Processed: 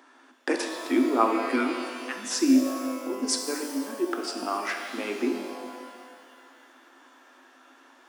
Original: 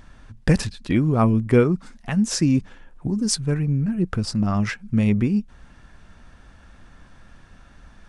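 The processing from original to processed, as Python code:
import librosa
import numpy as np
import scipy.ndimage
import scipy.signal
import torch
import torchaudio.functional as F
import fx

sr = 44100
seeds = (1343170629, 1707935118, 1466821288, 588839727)

y = scipy.signal.sosfilt(scipy.signal.cheby1(6, 6, 250.0, 'highpass', fs=sr, output='sos'), x)
y = fx.band_shelf(y, sr, hz=600.0, db=-15.0, octaves=1.7, at=(1.41, 2.25))
y = fx.rev_shimmer(y, sr, seeds[0], rt60_s=2.0, semitones=12, shimmer_db=-8, drr_db=3.5)
y = F.gain(torch.from_numpy(y), 1.5).numpy()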